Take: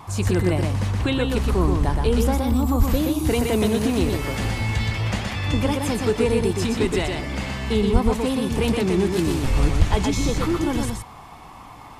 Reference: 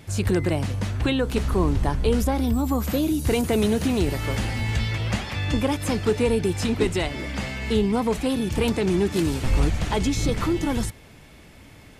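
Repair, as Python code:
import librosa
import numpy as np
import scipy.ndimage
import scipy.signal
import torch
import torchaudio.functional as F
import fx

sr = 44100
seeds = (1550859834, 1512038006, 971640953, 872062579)

y = fx.highpass(x, sr, hz=140.0, slope=24, at=(2.78, 2.9), fade=0.02)
y = fx.highpass(y, sr, hz=140.0, slope=24, at=(7.92, 8.04), fade=0.02)
y = fx.highpass(y, sr, hz=140.0, slope=24, at=(9.78, 9.9), fade=0.02)
y = fx.noise_reduce(y, sr, print_start_s=11.05, print_end_s=11.55, reduce_db=6.0)
y = fx.fix_echo_inverse(y, sr, delay_ms=122, level_db=-4.0)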